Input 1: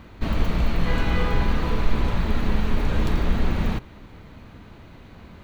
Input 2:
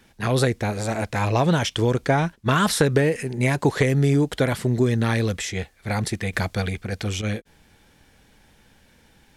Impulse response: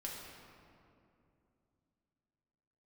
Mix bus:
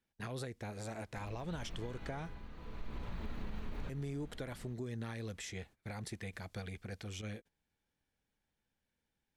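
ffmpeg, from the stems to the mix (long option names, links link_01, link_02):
-filter_complex "[0:a]dynaudnorm=framelen=180:gausssize=9:maxgain=13dB,adelay=950,volume=-10dB,afade=type=out:start_time=1.75:duration=0.73:silence=0.251189[link_01];[1:a]acompressor=threshold=-33dB:ratio=2,volume=-11.5dB,asplit=3[link_02][link_03][link_04];[link_02]atrim=end=2.45,asetpts=PTS-STARTPTS,afade=type=out:start_time=2.446:duration=0.004:curve=hsin[link_05];[link_03]atrim=start=2.45:end=3.89,asetpts=PTS-STARTPTS,volume=0[link_06];[link_04]atrim=start=3.89,asetpts=PTS-STARTPTS,afade=type=in:duration=0.004:curve=hsin[link_07];[link_05][link_06][link_07]concat=n=3:v=0:a=1,asplit=2[link_08][link_09];[link_09]apad=whole_len=281390[link_10];[link_01][link_10]sidechaincompress=threshold=-55dB:ratio=16:attack=32:release=726[link_11];[link_11][link_08]amix=inputs=2:normalize=0,agate=range=-19dB:threshold=-56dB:ratio=16:detection=peak,alimiter=level_in=8dB:limit=-24dB:level=0:latency=1:release=151,volume=-8dB"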